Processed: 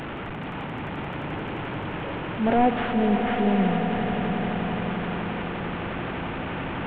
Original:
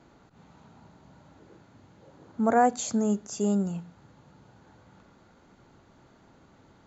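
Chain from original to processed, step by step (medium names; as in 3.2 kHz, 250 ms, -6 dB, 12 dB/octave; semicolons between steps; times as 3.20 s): one-bit delta coder 16 kbps, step -31 dBFS; transient shaper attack -5 dB, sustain +4 dB; echo with a slow build-up 87 ms, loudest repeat 8, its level -12.5 dB; trim +3.5 dB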